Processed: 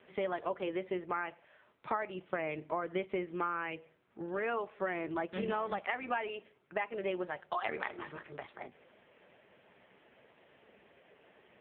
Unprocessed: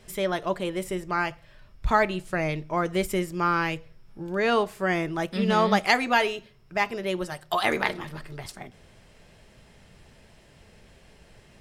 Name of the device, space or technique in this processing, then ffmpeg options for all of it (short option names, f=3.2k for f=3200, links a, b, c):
voicemail: -filter_complex "[0:a]asplit=3[a][b][c];[a]afade=t=out:st=7.46:d=0.02[d];[b]highshelf=f=7.7k:g=5,afade=t=in:st=7.46:d=0.02,afade=t=out:st=8.26:d=0.02[e];[c]afade=t=in:st=8.26:d=0.02[f];[d][e][f]amix=inputs=3:normalize=0,highpass=310,lowpass=2.8k,acompressor=threshold=-30dB:ratio=10" -ar 8000 -c:a libopencore_amrnb -b:a 5900